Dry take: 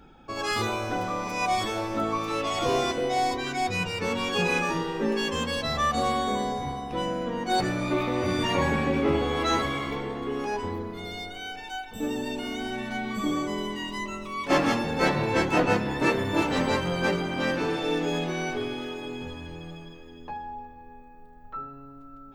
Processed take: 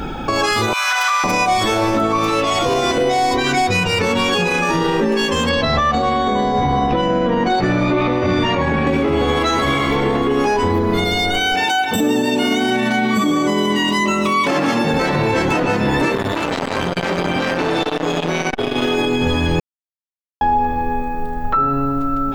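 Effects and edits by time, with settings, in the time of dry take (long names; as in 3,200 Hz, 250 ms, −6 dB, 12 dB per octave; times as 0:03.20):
0:00.73–0:01.24: high-pass filter 1,200 Hz 24 dB per octave
0:05.49–0:08.87: high-frequency loss of the air 140 metres
0:11.54–0:14.94: Chebyshev high-pass filter 150 Hz
0:16.15–0:18.95: saturating transformer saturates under 1,800 Hz
0:19.60–0:20.41: silence
whole clip: downward compressor, threshold −38 dBFS; boost into a limiter +34.5 dB; level −7.5 dB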